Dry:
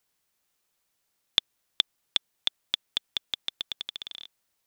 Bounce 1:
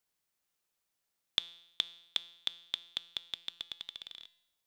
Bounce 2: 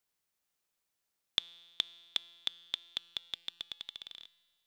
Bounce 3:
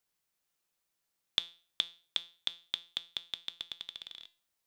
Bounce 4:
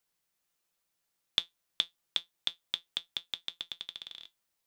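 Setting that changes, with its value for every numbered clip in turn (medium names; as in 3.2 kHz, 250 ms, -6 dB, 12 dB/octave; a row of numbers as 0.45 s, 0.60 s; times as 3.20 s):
feedback comb, decay: 0.84 s, 1.8 s, 0.39 s, 0.15 s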